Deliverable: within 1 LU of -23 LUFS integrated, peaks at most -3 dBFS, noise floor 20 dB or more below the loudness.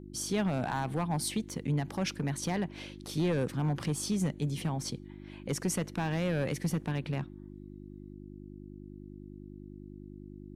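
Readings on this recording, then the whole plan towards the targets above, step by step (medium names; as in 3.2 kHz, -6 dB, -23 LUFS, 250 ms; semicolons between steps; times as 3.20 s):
clipped samples 1.2%; clipping level -23.5 dBFS; hum 50 Hz; highest harmonic 350 Hz; hum level -46 dBFS; loudness -33.0 LUFS; peak level -23.5 dBFS; loudness target -23.0 LUFS
-> clip repair -23.5 dBFS; de-hum 50 Hz, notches 7; trim +10 dB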